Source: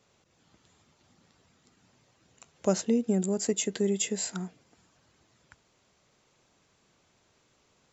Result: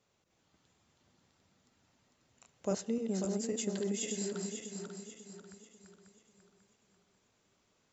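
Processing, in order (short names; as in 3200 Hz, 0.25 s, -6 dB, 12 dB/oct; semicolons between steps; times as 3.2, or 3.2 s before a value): regenerating reverse delay 0.271 s, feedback 64%, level -3.5 dB; on a send: reverb RT60 1.9 s, pre-delay 72 ms, DRR 18.5 dB; on the sum: gain -9 dB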